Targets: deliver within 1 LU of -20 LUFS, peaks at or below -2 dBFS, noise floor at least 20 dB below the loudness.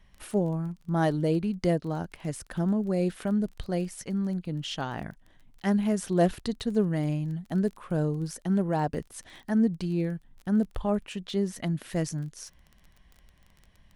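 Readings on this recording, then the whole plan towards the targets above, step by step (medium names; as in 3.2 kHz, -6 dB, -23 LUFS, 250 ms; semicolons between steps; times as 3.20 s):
tick rate 22 per s; loudness -29.0 LUFS; peak level -11.5 dBFS; loudness target -20.0 LUFS
-> de-click; trim +9 dB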